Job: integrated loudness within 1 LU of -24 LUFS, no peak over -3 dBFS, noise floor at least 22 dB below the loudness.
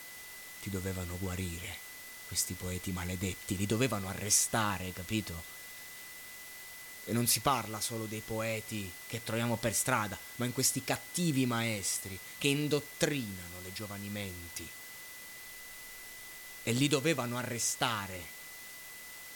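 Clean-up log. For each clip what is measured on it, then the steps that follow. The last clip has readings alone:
steady tone 2000 Hz; tone level -50 dBFS; noise floor -48 dBFS; noise floor target -56 dBFS; loudness -33.5 LUFS; peak -13.5 dBFS; loudness target -24.0 LUFS
-> notch 2000 Hz, Q 30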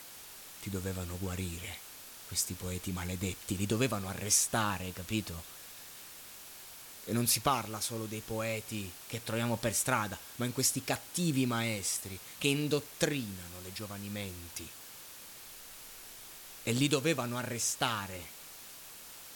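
steady tone none; noise floor -50 dBFS; noise floor target -56 dBFS
-> denoiser 6 dB, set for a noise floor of -50 dBFS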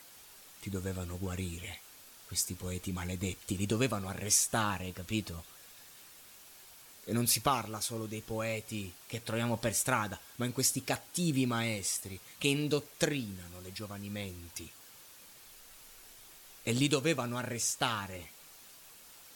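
noise floor -55 dBFS; noise floor target -56 dBFS
-> denoiser 6 dB, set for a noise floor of -55 dBFS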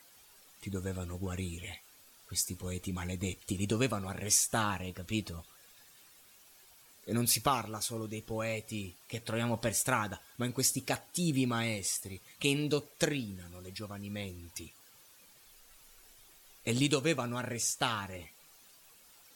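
noise floor -60 dBFS; loudness -33.5 LUFS; peak -13.5 dBFS; loudness target -24.0 LUFS
-> gain +9.5 dB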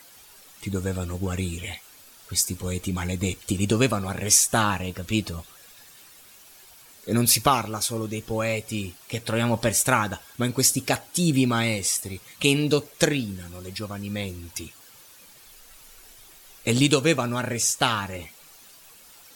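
loudness -24.0 LUFS; peak -4.0 dBFS; noise floor -50 dBFS

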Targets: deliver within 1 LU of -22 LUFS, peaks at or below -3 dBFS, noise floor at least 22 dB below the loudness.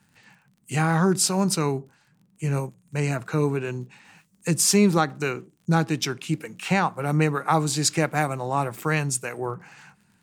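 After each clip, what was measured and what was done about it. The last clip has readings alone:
ticks 36/s; loudness -24.0 LUFS; peak -7.5 dBFS; loudness target -22.0 LUFS
-> de-click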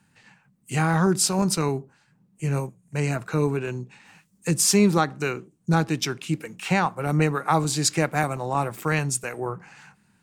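ticks 0.39/s; loudness -24.0 LUFS; peak -7.5 dBFS; loudness target -22.0 LUFS
-> gain +2 dB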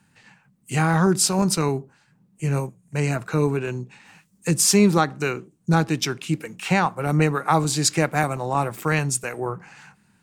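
loudness -22.0 LUFS; peak -5.5 dBFS; noise floor -63 dBFS

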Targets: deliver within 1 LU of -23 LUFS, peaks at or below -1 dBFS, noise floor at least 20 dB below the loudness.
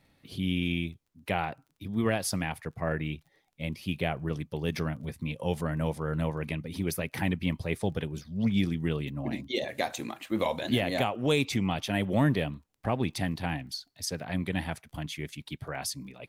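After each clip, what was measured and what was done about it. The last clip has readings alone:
ticks 21/s; loudness -31.5 LUFS; peak -13.5 dBFS; loudness target -23.0 LUFS
-> de-click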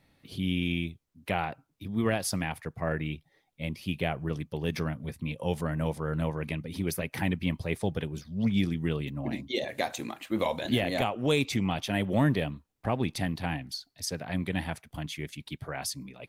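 ticks 0/s; loudness -31.5 LUFS; peak -13.5 dBFS; loudness target -23.0 LUFS
-> gain +8.5 dB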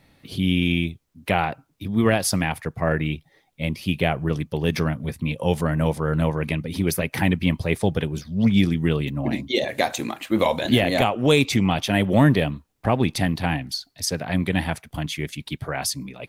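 loudness -23.0 LUFS; peak -5.0 dBFS; noise floor -64 dBFS

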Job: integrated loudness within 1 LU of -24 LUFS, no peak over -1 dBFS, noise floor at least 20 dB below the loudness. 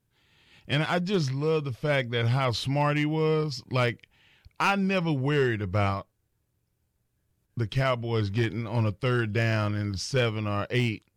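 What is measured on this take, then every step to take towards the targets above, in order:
clipped 0.4%; flat tops at -16.5 dBFS; loudness -27.0 LUFS; peak -16.5 dBFS; loudness target -24.0 LUFS
-> clip repair -16.5 dBFS; gain +3 dB

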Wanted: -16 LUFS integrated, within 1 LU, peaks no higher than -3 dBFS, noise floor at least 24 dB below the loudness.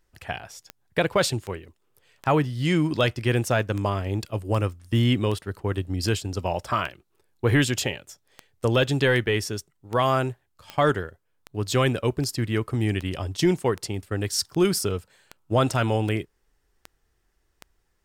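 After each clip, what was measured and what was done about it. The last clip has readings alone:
clicks 23; loudness -25.0 LUFS; peak -10.5 dBFS; loudness target -16.0 LUFS
-> de-click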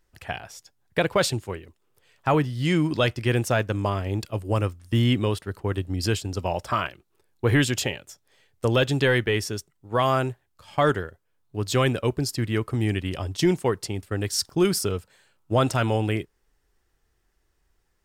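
clicks 0; loudness -25.0 LUFS; peak -11.0 dBFS; loudness target -16.0 LUFS
-> gain +9 dB; limiter -3 dBFS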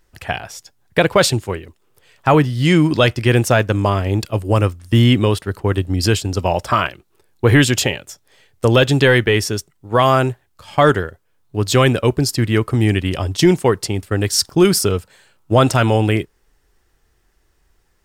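loudness -16.5 LUFS; peak -3.0 dBFS; noise floor -62 dBFS

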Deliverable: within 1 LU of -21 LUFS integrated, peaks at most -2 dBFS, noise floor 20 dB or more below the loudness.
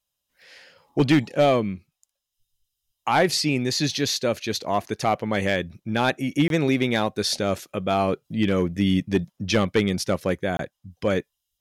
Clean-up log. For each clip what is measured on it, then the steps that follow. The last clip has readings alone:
clipped 0.4%; flat tops at -11.5 dBFS; dropouts 2; longest dropout 22 ms; loudness -23.5 LUFS; peak -11.5 dBFS; loudness target -21.0 LUFS
-> clip repair -11.5 dBFS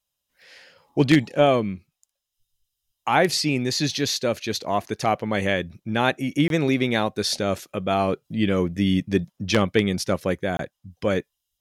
clipped 0.0%; dropouts 2; longest dropout 22 ms
-> interpolate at 6.48/10.57, 22 ms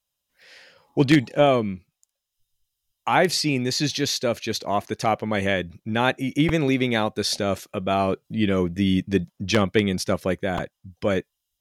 dropouts 0; loudness -23.0 LUFS; peak -2.5 dBFS; loudness target -21.0 LUFS
-> gain +2 dB; limiter -2 dBFS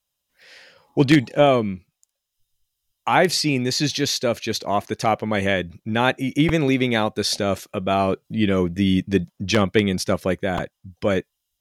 loudness -21.0 LUFS; peak -2.0 dBFS; noise floor -79 dBFS

